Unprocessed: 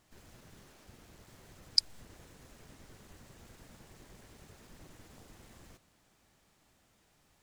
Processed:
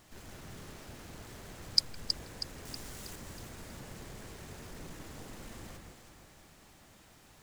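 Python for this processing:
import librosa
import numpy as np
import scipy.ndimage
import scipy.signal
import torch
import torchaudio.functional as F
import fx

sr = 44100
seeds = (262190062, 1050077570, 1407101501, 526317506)

y = fx.law_mismatch(x, sr, coded='mu')
y = fx.high_shelf(y, sr, hz=4300.0, db=10.0, at=(2.65, 3.16))
y = fx.echo_alternate(y, sr, ms=160, hz=2300.0, feedback_pct=68, wet_db=-3.5)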